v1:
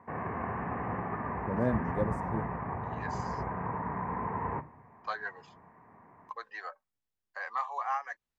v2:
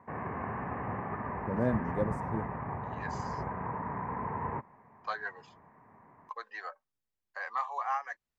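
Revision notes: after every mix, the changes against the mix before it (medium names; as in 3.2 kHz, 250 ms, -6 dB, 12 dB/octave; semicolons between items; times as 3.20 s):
background: send off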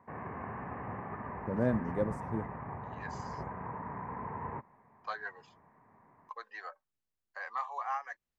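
second voice -3.0 dB; background -4.5 dB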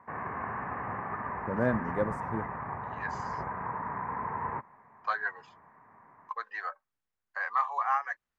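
master: add peaking EQ 1.4 kHz +9.5 dB 1.7 oct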